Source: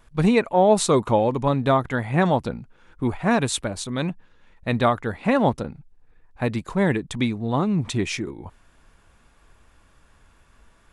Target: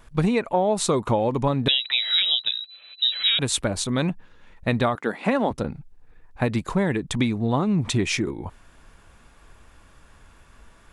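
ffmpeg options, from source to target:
-filter_complex "[0:a]asettb=1/sr,asplit=3[a][b][c];[a]atrim=end=4.954[d];[b]atrim=start=4.95:end=5.51,asetpts=PTS-STARTPTS,afade=t=in:d=0.004:c=qsin,afade=t=out:st=0.556:d=0.004:c=qsin,highpass=f=200:w=0.5412,highpass=f=200:w=1.3066[e];[c]atrim=start=5.506[f];[d][e]acrossfade=d=0.004:c1=hsin:c2=qsin[g];[g][f]acrossfade=d=0.004:c1=qsin:c2=hsin,acompressor=threshold=-22dB:ratio=10,asettb=1/sr,asplit=3[h][i][j];[h]atrim=end=1.684[k];[i]atrim=start=1.68:end=3.39,asetpts=PTS-STARTPTS,afade=t=in:d=0.004:c=qsin,afade=t=out:st=1.706:d=0.004:c=qsin,lowpass=f=3.4k:t=q:w=0.5098,lowpass=f=3.4k:t=q:w=0.6013,lowpass=f=3.4k:t=q:w=0.9,lowpass=f=3.4k:t=q:w=2.563,afreqshift=-4000[l];[j]atrim=start=3.386[m];[k][l]acrossfade=d=0.004:c1=hsin:c2=qsin[n];[n][m]acrossfade=d=0.004:c1=qsin:c2=hsin,volume=4.5dB"

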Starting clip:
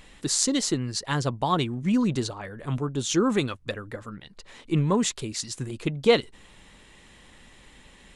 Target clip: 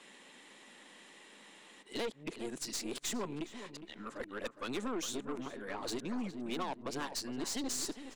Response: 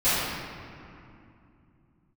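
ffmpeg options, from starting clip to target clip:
-filter_complex "[0:a]areverse,acompressor=threshold=-28dB:ratio=6,highpass=f=230:w=0.5412,highpass=f=230:w=1.3066,aeval=exprs='(tanh(39.8*val(0)+0.45)-tanh(0.45))/39.8':c=same,asplit=2[a][b];[b]adelay=411,lowpass=f=2.2k:p=1,volume=-10.5dB,asplit=2[c][d];[d]adelay=411,lowpass=f=2.2k:p=1,volume=0.34,asplit=2[e][f];[f]adelay=411,lowpass=f=2.2k:p=1,volume=0.34,asplit=2[g][h];[h]adelay=411,lowpass=f=2.2k:p=1,volume=0.34[i];[c][e][g][i]amix=inputs=4:normalize=0[j];[a][j]amix=inputs=2:normalize=0,volume=-1dB"

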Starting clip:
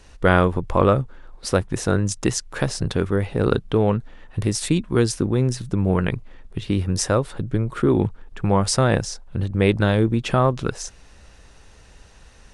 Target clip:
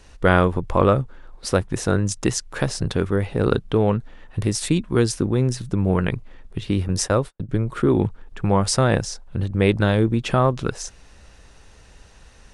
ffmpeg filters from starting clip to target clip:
-filter_complex "[0:a]asettb=1/sr,asplit=3[a][b][c];[a]atrim=end=6.884[d];[b]atrim=start=6.88:end=7.49,asetpts=PTS-STARTPTS,afade=t=in:d=0.004:c=qsin,afade=t=out:st=0.606:d=0.004:c=qsin,agate=range=-52dB:threshold=-25dB:ratio=16:detection=peak[e];[c]atrim=start=7.486[f];[d][e]acrossfade=d=0.004:c1=hsin:c2=qsin[g];[g][f]acrossfade=d=0.004:c1=qsin:c2=hsin"

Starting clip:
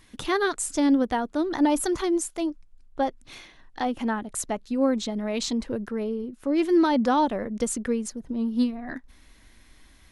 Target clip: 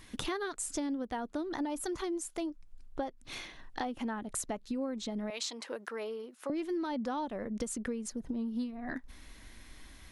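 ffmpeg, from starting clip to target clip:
-filter_complex "[0:a]asettb=1/sr,asplit=3[a][b][c];[a]atrim=end=5.304[d];[b]atrim=start=5.3:end=6.5,asetpts=PTS-STARTPTS,afade=t=in:d=0.004:c=qsin,afade=t=out:st=1.196:d=0.004:c=qsin,highpass=710[e];[c]atrim=start=6.496[f];[d][e]acrossfade=d=0.004:c1=hsin:c2=qsin[g];[g][f]acrossfade=d=0.004:c1=qsin:c2=hsin,acompressor=threshold=-36dB:ratio=6,volume=2dB"

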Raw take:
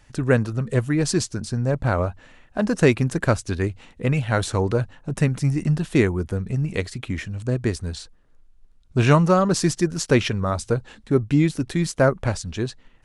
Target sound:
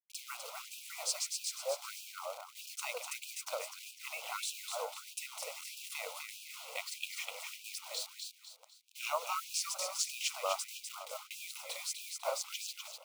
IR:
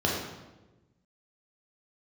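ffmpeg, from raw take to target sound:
-af "acompressor=threshold=-27dB:ratio=2.5,acrusher=bits=6:mix=0:aa=0.000001,tremolo=f=230:d=0.462,asuperstop=centerf=1700:order=4:qfactor=2.1,aecho=1:1:250|500|750|1000|1250:0.562|0.214|0.0812|0.0309|0.0117,afftfilt=real='re*gte(b*sr/1024,460*pow(2400/460,0.5+0.5*sin(2*PI*1.6*pts/sr)))':imag='im*gte(b*sr/1024,460*pow(2400/460,0.5+0.5*sin(2*PI*1.6*pts/sr)))':win_size=1024:overlap=0.75"

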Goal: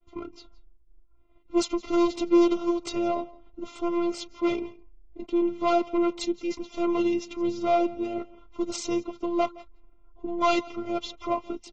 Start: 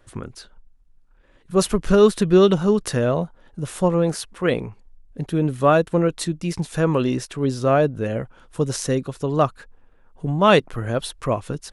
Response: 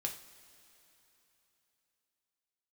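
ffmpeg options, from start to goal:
-filter_complex "[0:a]agate=range=-33dB:threshold=-50dB:ratio=3:detection=peak,equalizer=f=230:w=4:g=8,aecho=1:1:5.9:0.32,acrossover=split=120[a][b];[a]acompressor=threshold=-45dB:ratio=16[c];[b]asoftclip=type=tanh:threshold=-12dB[d];[c][d]amix=inputs=2:normalize=0,adynamicsmooth=sensitivity=7:basefreq=2.4k,afftfilt=real='hypot(re,im)*cos(PI*b)':imag='0':win_size=512:overlap=0.75,asuperstop=centerf=1600:order=12:qfactor=3.3,aecho=1:1:168:0.0841" -ar 32000 -c:a aac -b:a 24k

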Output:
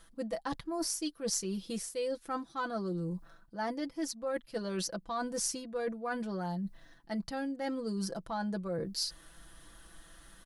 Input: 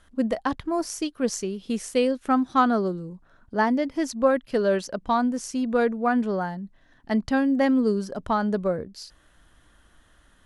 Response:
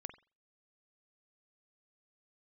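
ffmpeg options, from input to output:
-af "aecho=1:1:6:0.76,areverse,acompressor=threshold=-34dB:ratio=6,areverse,aexciter=amount=2.2:drive=4.2:freq=4k"

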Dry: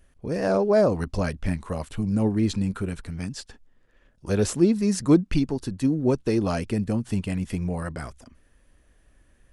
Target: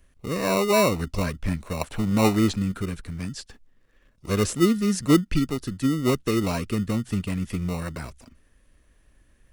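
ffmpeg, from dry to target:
-filter_complex "[0:a]asettb=1/sr,asplit=3[a][b][c];[a]atrim=end=1.814[d];[b]atrim=start=1.81:end=2.54,asetpts=PTS-STARTPTS,afade=t=in:d=0.004:c=qsin,afade=t=out:st=0.726:d=0.004:c=qsin,equalizer=f=850:w=0.85:g=14[e];[c]atrim=start=2.536[f];[d][e]acrossfade=d=0.004:c1=hsin:c2=qsin[g];[g][f]acrossfade=d=0.004:c1=qsin:c2=hsin,acrossover=split=280|1000|2800[h][i][j][k];[i]acrusher=samples=27:mix=1:aa=0.000001[l];[h][l][j][k]amix=inputs=4:normalize=0"

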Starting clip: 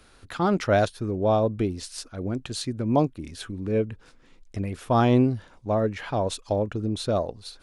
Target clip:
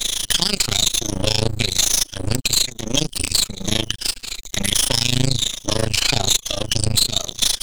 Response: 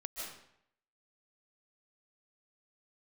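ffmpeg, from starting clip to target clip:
-filter_complex "[0:a]afftfilt=real='re*pow(10,15/40*sin(2*PI*(1.2*log(max(b,1)*sr/1024/100)/log(2)-(-1.1)*(pts-256)/sr)))':imag='im*pow(10,15/40*sin(2*PI*(1.2*log(max(b,1)*sr/1024/100)/log(2)-(-1.1)*(pts-256)/sr)))':win_size=1024:overlap=0.75,acrossover=split=130|3000[a][b][c];[b]acompressor=threshold=-32dB:ratio=3[d];[a][d][c]amix=inputs=3:normalize=0,asoftclip=type=hard:threshold=-18.5dB,bandreject=f=500:w=12,aexciter=amount=6.6:drive=9.1:freq=2.1k,acompressor=threshold=-24dB:ratio=6,tremolo=f=27:d=0.947,superequalizer=9b=0.708:11b=0.631:12b=0.447:14b=0.631:16b=0.708,aeval=exprs='max(val(0),0)':c=same,equalizer=f=5.1k:w=0.42:g=7,alimiter=level_in=18.5dB:limit=-1dB:release=50:level=0:latency=1,volume=-1dB"

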